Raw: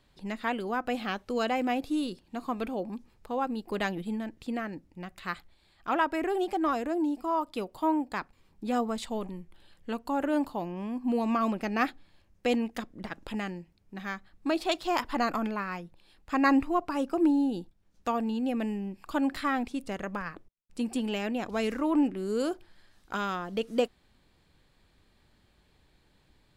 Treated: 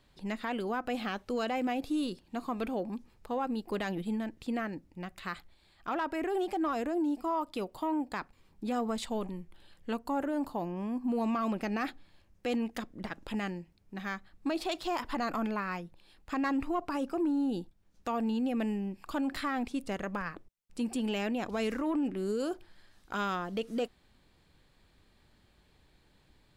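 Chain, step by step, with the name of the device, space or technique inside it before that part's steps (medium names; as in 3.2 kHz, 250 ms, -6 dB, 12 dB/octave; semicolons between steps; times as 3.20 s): 9.96–11.24 s: peaking EQ 3 kHz -4.5 dB 1.3 oct; soft clipper into limiter (saturation -17 dBFS, distortion -23 dB; peak limiter -25 dBFS, peak gain reduction 7 dB)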